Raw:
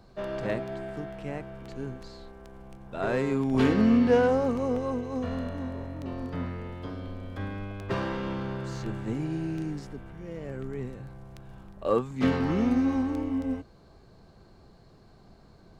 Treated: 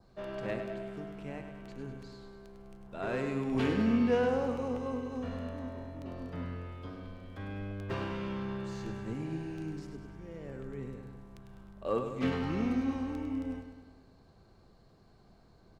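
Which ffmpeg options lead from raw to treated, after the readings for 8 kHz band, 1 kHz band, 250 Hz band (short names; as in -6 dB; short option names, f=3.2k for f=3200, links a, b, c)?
n/a, -6.0 dB, -6.5 dB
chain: -filter_complex "[0:a]adynamicequalizer=threshold=0.00251:dfrequency=2600:dqfactor=2.6:tfrequency=2600:tqfactor=2.6:attack=5:release=100:ratio=0.375:range=2:mode=boostabove:tftype=bell,asplit=2[a][b];[b]aecho=0:1:101|202|303|404|505|606|707:0.398|0.235|0.139|0.0818|0.0482|0.0285|0.0168[c];[a][c]amix=inputs=2:normalize=0,volume=-7dB"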